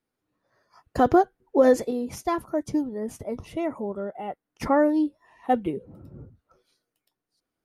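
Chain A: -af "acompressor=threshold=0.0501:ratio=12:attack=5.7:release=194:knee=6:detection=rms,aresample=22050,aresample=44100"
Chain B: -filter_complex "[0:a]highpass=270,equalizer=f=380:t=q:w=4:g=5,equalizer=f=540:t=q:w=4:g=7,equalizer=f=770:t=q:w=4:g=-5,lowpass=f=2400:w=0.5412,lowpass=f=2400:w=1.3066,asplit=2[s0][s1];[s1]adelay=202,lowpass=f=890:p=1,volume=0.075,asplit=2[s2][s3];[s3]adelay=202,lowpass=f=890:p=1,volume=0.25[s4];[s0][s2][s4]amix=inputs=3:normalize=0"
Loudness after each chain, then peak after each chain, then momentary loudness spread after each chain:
-34.5 LUFS, -22.0 LUFS; -19.5 dBFS, -2.0 dBFS; 10 LU, 19 LU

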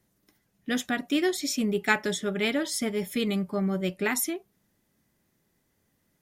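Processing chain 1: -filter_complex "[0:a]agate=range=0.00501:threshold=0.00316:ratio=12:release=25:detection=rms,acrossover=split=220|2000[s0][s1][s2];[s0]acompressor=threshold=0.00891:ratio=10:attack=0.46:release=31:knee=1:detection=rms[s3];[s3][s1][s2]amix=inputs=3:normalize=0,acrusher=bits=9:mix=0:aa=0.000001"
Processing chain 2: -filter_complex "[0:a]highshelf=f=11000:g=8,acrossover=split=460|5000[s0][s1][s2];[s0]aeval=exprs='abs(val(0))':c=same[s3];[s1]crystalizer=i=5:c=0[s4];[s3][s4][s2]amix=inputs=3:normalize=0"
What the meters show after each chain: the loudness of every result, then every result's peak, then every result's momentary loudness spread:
-29.0 LUFS, -25.5 LUFS; -9.5 dBFS, -3.5 dBFS; 6 LU, 10 LU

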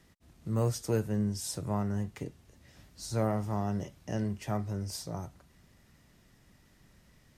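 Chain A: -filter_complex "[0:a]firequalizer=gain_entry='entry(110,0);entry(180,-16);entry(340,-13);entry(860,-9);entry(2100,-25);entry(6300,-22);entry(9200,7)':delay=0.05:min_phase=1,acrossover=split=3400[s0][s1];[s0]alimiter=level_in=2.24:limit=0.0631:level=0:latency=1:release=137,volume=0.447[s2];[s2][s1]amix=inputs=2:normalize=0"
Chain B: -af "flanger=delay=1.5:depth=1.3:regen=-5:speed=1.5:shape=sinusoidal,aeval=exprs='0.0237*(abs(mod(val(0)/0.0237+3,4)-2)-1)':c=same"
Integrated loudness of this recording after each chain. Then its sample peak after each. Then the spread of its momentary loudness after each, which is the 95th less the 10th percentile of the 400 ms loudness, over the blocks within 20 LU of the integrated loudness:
-40.0 LUFS, -40.5 LUFS; -25.5 dBFS, -32.5 dBFS; 11 LU, 10 LU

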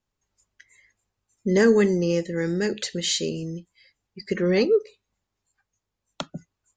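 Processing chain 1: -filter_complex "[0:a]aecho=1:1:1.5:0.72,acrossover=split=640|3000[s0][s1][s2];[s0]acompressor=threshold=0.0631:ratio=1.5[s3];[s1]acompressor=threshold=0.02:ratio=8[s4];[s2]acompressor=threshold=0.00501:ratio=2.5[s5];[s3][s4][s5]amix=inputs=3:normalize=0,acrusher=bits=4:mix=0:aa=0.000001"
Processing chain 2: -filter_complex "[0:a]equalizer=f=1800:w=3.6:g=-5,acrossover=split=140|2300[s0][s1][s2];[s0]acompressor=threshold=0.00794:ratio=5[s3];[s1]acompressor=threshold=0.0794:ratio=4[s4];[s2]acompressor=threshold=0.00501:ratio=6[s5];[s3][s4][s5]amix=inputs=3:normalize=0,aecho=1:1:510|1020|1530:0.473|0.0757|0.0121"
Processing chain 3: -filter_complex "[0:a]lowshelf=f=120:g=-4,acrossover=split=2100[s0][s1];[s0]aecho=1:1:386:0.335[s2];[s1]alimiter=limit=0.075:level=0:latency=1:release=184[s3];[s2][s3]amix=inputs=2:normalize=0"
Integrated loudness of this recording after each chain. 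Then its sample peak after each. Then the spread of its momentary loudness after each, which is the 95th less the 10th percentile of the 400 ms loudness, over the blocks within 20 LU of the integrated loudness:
-26.5 LUFS, -28.0 LUFS, -24.0 LUFS; -11.5 dBFS, -13.5 dBFS, -8.5 dBFS; 14 LU, 16 LU, 21 LU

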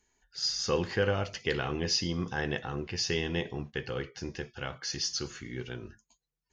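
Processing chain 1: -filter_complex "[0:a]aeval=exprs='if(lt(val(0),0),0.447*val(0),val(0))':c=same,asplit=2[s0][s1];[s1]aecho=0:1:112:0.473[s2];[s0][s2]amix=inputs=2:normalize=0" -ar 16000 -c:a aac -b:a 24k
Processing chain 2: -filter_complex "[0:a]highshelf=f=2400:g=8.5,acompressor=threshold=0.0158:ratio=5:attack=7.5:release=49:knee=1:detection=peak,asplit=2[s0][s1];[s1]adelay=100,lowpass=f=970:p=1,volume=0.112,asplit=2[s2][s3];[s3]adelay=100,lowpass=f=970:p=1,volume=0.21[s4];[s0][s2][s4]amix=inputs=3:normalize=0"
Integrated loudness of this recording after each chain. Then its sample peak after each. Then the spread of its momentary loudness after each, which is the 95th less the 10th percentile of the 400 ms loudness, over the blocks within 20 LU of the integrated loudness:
-33.5 LUFS, -36.5 LUFS; -14.0 dBFS, -19.5 dBFS; 11 LU, 6 LU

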